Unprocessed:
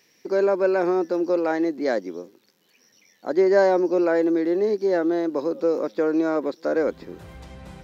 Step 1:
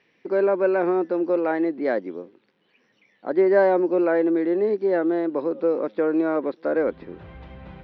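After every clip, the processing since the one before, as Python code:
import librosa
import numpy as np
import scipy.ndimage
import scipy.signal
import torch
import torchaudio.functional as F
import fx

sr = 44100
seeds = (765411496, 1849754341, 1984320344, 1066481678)

y = scipy.signal.sosfilt(scipy.signal.butter(4, 3200.0, 'lowpass', fs=sr, output='sos'), x)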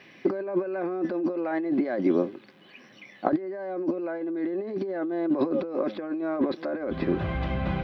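y = fx.over_compress(x, sr, threshold_db=-32.0, ratio=-1.0)
y = fx.notch_comb(y, sr, f0_hz=460.0)
y = y * librosa.db_to_amplitude(5.0)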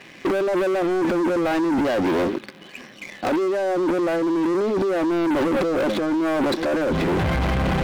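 y = fx.leveller(x, sr, passes=2)
y = fx.transient(y, sr, attack_db=-2, sustain_db=6)
y = 10.0 ** (-27.0 / 20.0) * np.tanh(y / 10.0 ** (-27.0 / 20.0))
y = y * librosa.db_to_amplitude(8.0)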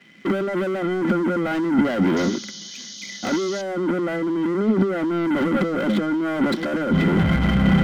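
y = fx.small_body(x, sr, hz=(200.0, 1400.0, 2000.0, 3100.0), ring_ms=45, db=15)
y = fx.spec_paint(y, sr, seeds[0], shape='noise', start_s=2.16, length_s=1.46, low_hz=2900.0, high_hz=6800.0, level_db=-33.0)
y = fx.band_widen(y, sr, depth_pct=40)
y = y * librosa.db_to_amplitude(-4.5)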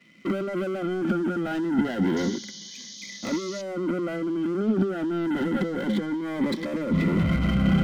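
y = fx.notch_cascade(x, sr, direction='rising', hz=0.28)
y = y * librosa.db_to_amplitude(-4.0)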